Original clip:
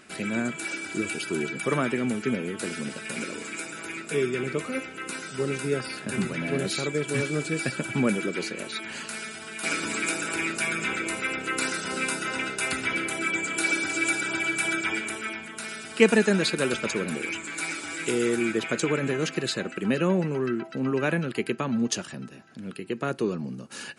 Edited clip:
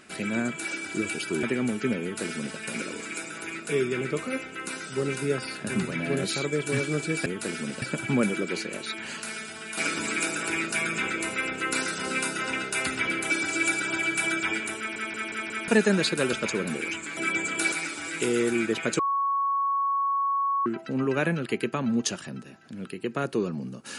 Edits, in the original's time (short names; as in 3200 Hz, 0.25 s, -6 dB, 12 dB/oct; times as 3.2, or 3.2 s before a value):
1.43–1.85 cut
2.44–3 copy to 7.68
13.16–13.71 move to 17.58
15.19 stutter in place 0.18 s, 5 plays
18.85–20.52 bleep 1110 Hz -22.5 dBFS